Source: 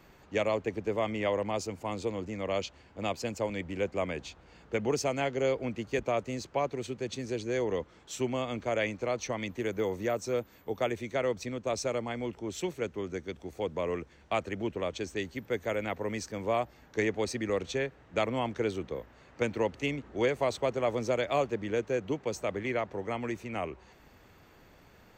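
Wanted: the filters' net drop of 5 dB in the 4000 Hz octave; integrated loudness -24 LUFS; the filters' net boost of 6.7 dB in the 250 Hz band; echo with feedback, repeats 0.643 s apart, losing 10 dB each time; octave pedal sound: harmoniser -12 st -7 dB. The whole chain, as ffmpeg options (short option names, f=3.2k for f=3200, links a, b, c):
-filter_complex "[0:a]equalizer=f=250:t=o:g=8.5,equalizer=f=4k:t=o:g=-7,aecho=1:1:643|1286|1929|2572:0.316|0.101|0.0324|0.0104,asplit=2[a][b];[b]asetrate=22050,aresample=44100,atempo=2,volume=-7dB[c];[a][c]amix=inputs=2:normalize=0,volume=5.5dB"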